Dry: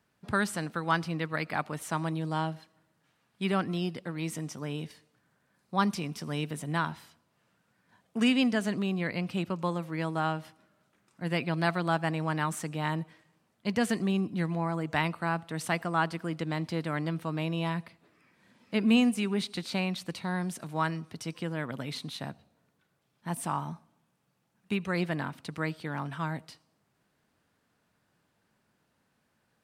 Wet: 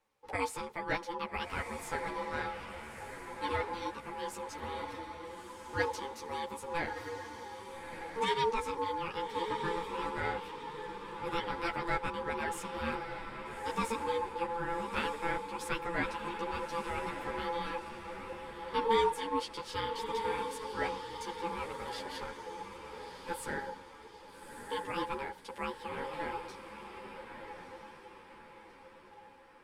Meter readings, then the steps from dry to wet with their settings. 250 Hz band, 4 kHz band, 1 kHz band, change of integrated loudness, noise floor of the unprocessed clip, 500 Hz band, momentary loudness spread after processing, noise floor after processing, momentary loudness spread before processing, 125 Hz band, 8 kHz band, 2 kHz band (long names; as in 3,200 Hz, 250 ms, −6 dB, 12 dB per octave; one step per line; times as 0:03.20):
−13.5 dB, −4.0 dB, 0.0 dB, −5.5 dB, −74 dBFS, −0.5 dB, 13 LU, −54 dBFS, 9 LU, −15.0 dB, −5.0 dB, −3.5 dB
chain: ring modulation 680 Hz
feedback delay with all-pass diffusion 1,269 ms, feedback 46%, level −7 dB
string-ensemble chorus